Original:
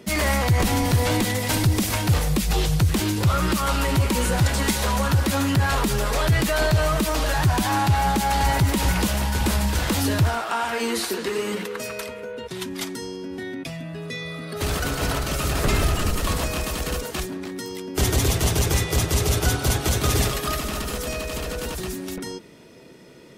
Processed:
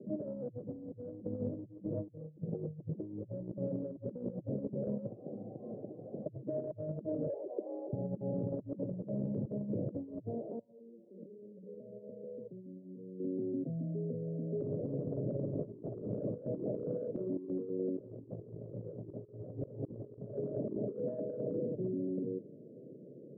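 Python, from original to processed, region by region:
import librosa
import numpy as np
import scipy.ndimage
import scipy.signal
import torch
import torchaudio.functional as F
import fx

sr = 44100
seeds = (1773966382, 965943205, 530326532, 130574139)

y = fx.chain(x, sr, fx.comb(ms=6.3, depth=0.97),
    fx.doppler_dist(depth_ms=0.41), at=(1.69, 2.44))
y = fx.chain(y, sr, fx.freq_invert(carrier_hz=2700),
    fx.peak_eq(hz=750.0, db=9.0, octaves=0.27), at=(5.06, 6.26))
y = fx.chain(y, sr, fx.steep_highpass(hz=390.0, slope=36),
    fx.peak_eq(hz=1500.0, db=4.5, octaves=0.78), at=(7.27, 7.93))
y = fx.chain(y, sr, fx.comb_fb(f0_hz=190.0, decay_s=0.23, harmonics='odd', damping=0.0, mix_pct=80),
    fx.over_compress(threshold_db=-45.0, ratio=-1.0), at=(10.59, 13.2))
y = fx.chain(y, sr, fx.hum_notches(base_hz=50, count=8),
    fx.filter_held_lowpass(hz=9.7, low_hz=350.0, high_hz=1500.0), at=(15.73, 21.6))
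y = scipy.signal.sosfilt(scipy.signal.cheby1(5, 1.0, [110.0, 590.0], 'bandpass', fs=sr, output='sos'), y)
y = fx.over_compress(y, sr, threshold_db=-31.0, ratio=-0.5)
y = y * librosa.db_to_amplitude(-7.5)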